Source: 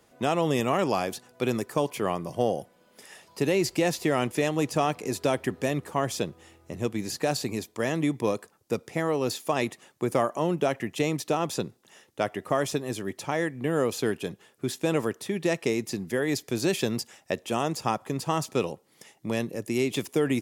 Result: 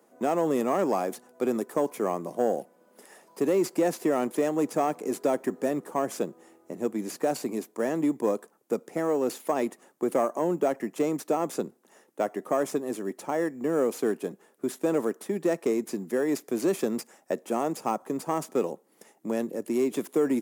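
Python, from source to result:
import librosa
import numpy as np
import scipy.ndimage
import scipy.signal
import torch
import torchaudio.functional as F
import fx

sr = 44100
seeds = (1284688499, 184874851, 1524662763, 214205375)

p1 = fx.peak_eq(x, sr, hz=3200.0, db=-13.5, octaves=1.7)
p2 = fx.sample_hold(p1, sr, seeds[0], rate_hz=7300.0, jitter_pct=0)
p3 = p1 + F.gain(torch.from_numpy(p2), -9.5).numpy()
p4 = 10.0 ** (-12.5 / 20.0) * np.tanh(p3 / 10.0 ** (-12.5 / 20.0))
y = scipy.signal.sosfilt(scipy.signal.butter(4, 210.0, 'highpass', fs=sr, output='sos'), p4)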